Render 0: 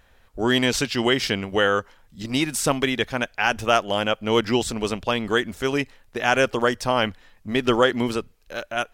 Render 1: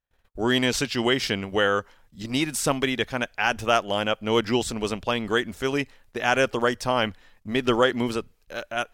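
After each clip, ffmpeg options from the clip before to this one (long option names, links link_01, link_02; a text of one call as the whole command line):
ffmpeg -i in.wav -af "agate=range=-32dB:threshold=-53dB:ratio=16:detection=peak,volume=-2dB" out.wav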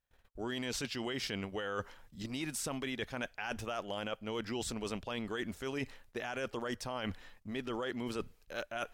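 ffmpeg -i in.wav -af "alimiter=limit=-17.5dB:level=0:latency=1:release=22,areverse,acompressor=threshold=-36dB:ratio=5,areverse" out.wav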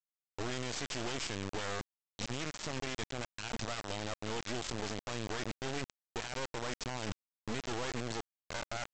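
ffmpeg -i in.wav -af "alimiter=level_in=8.5dB:limit=-24dB:level=0:latency=1:release=39,volume=-8.5dB,aresample=16000,acrusher=bits=4:dc=4:mix=0:aa=0.000001,aresample=44100,volume=6dB" out.wav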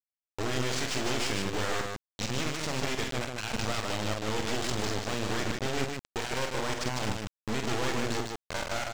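ffmpeg -i in.wav -filter_complex "[0:a]aeval=exprs='val(0)*gte(abs(val(0)),0.0075)':channel_layout=same,asplit=2[link_01][link_02];[link_02]aecho=0:1:46.65|151.6:0.501|0.631[link_03];[link_01][link_03]amix=inputs=2:normalize=0,volume=5.5dB" out.wav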